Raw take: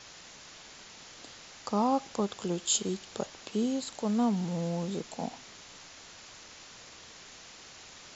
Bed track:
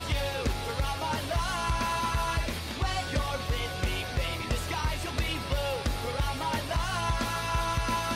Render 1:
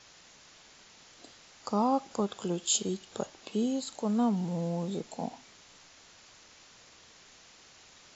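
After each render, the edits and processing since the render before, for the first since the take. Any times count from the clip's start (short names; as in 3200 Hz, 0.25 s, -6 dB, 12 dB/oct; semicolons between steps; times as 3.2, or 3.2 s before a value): noise print and reduce 6 dB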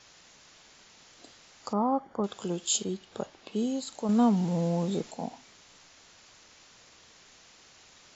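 1.73–2.24 polynomial smoothing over 41 samples; 2.84–3.56 air absorption 94 m; 4.09–5.11 gain +4.5 dB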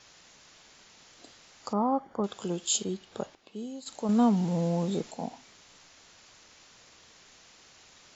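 3.35–3.86 gain -9 dB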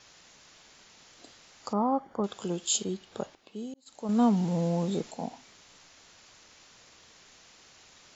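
3.74–4.24 fade in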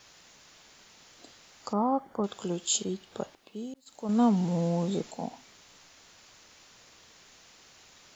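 requantised 12-bit, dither none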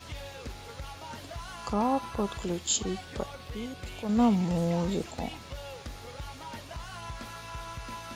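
add bed track -11.5 dB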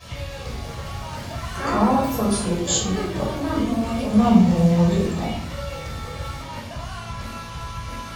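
echoes that change speed 0.303 s, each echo +5 st, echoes 3, each echo -6 dB; shoebox room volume 880 m³, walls furnished, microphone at 5.8 m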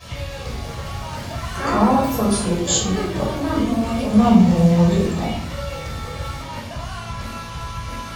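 gain +2.5 dB; limiter -1 dBFS, peak gain reduction 1.5 dB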